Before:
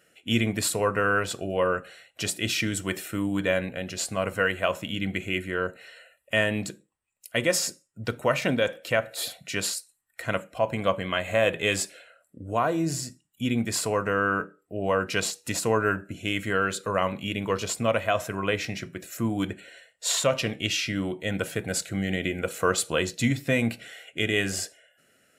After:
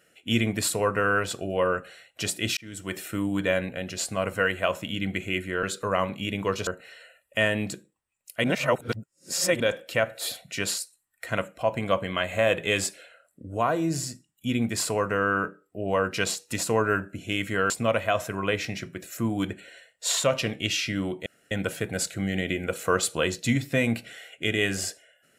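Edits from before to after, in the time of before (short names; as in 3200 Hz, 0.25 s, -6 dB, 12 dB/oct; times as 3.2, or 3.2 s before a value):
2.57–3.07 fade in
7.4–8.56 reverse
16.66–17.7 move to 5.63
21.26 insert room tone 0.25 s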